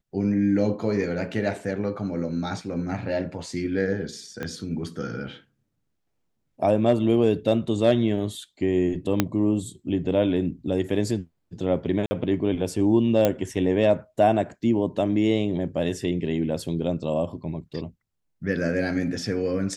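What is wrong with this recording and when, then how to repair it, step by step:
4.43 s: pop -17 dBFS
9.20 s: pop -5 dBFS
12.06–12.11 s: dropout 50 ms
13.25 s: pop -7 dBFS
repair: de-click; interpolate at 12.06 s, 50 ms

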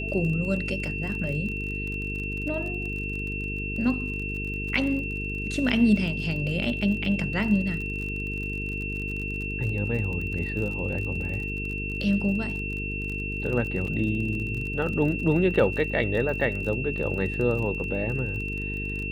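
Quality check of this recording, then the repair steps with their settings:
buzz 50 Hz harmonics 9 -33 dBFS
crackle 35 per s -33 dBFS
whine 2.7 kHz -32 dBFS
13.87 s: dropout 3.7 ms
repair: de-click; de-hum 50 Hz, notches 9; band-stop 2.7 kHz, Q 30; interpolate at 13.87 s, 3.7 ms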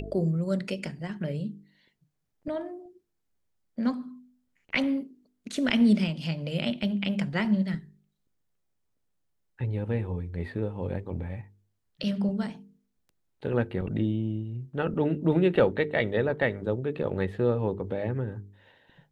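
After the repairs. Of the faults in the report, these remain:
nothing left

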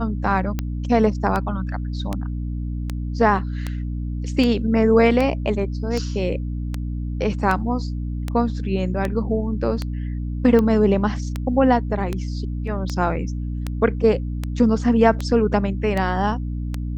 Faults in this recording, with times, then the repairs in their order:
hum 60 Hz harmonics 5 -26 dBFS
tick 78 rpm -11 dBFS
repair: de-click; de-hum 60 Hz, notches 5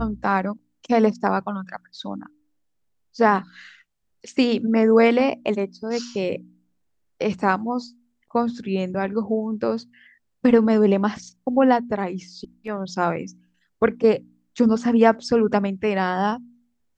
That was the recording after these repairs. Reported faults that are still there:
nothing left

